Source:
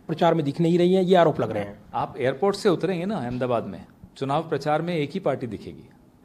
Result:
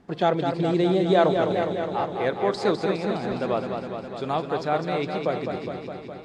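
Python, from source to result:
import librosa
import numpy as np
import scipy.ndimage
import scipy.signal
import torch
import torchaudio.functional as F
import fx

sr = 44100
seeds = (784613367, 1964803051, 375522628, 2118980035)

y = scipy.signal.sosfilt(scipy.signal.butter(2, 6000.0, 'lowpass', fs=sr, output='sos'), x)
y = fx.low_shelf(y, sr, hz=280.0, db=-5.5)
y = fx.echo_warbled(y, sr, ms=206, feedback_pct=72, rate_hz=2.8, cents=58, wet_db=-6)
y = F.gain(torch.from_numpy(y), -1.0).numpy()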